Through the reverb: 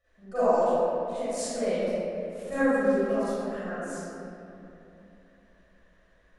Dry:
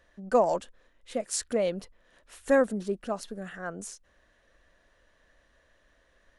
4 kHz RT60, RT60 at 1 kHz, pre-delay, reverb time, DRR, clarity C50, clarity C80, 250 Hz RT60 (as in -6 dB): 1.6 s, 2.7 s, 39 ms, 3.0 s, -17.0 dB, -10.5 dB, -5.5 dB, 3.8 s